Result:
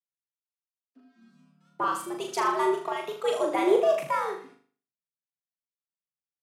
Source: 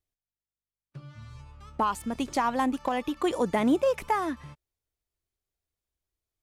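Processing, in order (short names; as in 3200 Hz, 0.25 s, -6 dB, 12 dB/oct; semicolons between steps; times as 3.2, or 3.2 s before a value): frequency shift +120 Hz; flutter echo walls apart 6.8 m, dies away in 0.56 s; three-band expander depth 70%; gain -2 dB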